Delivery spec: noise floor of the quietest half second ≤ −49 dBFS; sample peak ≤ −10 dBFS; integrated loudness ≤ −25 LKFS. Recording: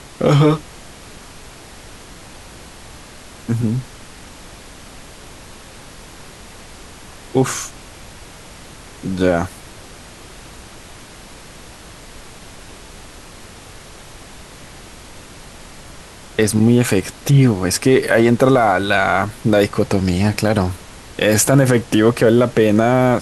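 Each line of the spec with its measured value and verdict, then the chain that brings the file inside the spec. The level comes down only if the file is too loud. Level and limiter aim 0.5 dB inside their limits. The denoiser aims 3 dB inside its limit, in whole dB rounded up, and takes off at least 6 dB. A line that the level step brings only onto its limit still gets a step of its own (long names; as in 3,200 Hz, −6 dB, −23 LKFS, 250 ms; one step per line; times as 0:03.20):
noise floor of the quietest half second −38 dBFS: out of spec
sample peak −2.5 dBFS: out of spec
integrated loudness −16.0 LKFS: out of spec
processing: broadband denoise 6 dB, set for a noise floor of −38 dBFS
level −9.5 dB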